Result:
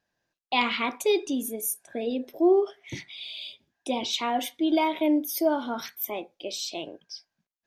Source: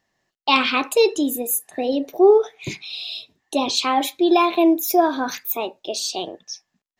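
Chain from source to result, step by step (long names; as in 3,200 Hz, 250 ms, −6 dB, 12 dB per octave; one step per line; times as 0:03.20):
change of speed 0.913×
level −7.5 dB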